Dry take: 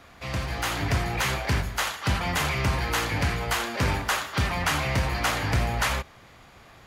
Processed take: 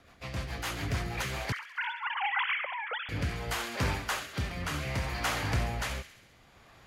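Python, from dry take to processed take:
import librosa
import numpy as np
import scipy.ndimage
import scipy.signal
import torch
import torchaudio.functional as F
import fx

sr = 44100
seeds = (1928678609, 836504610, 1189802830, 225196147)

y = fx.sine_speech(x, sr, at=(1.52, 3.09))
y = fx.echo_wet_highpass(y, sr, ms=67, feedback_pct=65, hz=1600.0, wet_db=-10.5)
y = fx.rotary_switch(y, sr, hz=7.0, then_hz=0.65, switch_at_s=0.8)
y = y * 10.0 ** (-5.0 / 20.0)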